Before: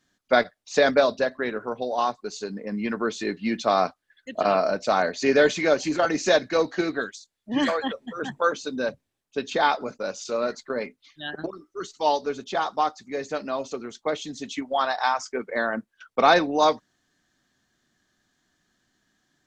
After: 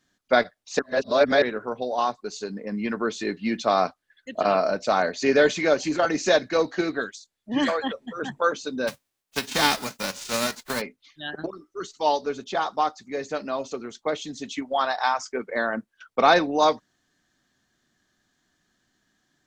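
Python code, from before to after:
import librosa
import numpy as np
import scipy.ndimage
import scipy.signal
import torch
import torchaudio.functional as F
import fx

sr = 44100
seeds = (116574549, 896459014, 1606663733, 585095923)

y = fx.envelope_flatten(x, sr, power=0.3, at=(8.87, 10.8), fade=0.02)
y = fx.edit(y, sr, fx.reverse_span(start_s=0.79, length_s=0.63), tone=tone)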